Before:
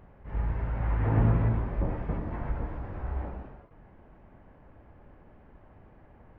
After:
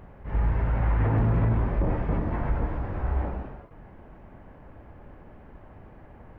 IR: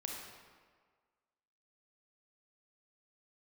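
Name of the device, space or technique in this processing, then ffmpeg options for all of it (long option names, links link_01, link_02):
clipper into limiter: -af "asoftclip=type=hard:threshold=-16dB,alimiter=limit=-23dB:level=0:latency=1:release=18,volume=6.5dB"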